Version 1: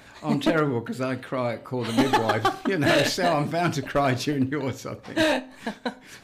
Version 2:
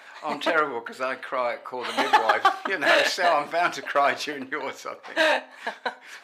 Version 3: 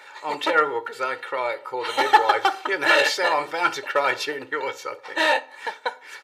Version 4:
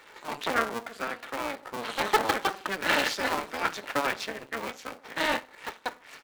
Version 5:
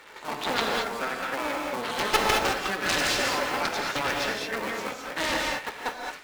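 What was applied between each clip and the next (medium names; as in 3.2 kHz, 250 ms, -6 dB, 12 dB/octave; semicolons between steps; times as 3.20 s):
high-pass 810 Hz 12 dB/octave; treble shelf 3.7 kHz -12 dB; trim +7 dB
comb 2.2 ms, depth 83%
cycle switcher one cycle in 2, muted; trim -4.5 dB
Chebyshev shaper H 3 -16 dB, 7 -11 dB, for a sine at -6 dBFS; gated-style reverb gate 240 ms rising, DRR 0 dB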